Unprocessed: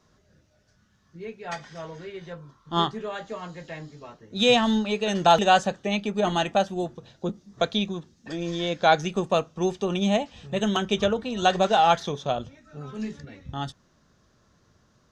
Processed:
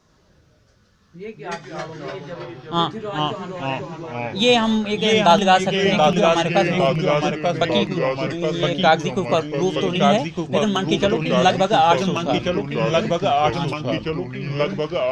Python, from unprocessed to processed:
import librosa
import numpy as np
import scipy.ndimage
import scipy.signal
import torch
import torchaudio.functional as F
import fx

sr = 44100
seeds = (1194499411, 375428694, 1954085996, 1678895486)

y = fx.echo_pitch(x, sr, ms=85, semitones=-2, count=3, db_per_echo=-3.0)
y = y * 10.0 ** (3.5 / 20.0)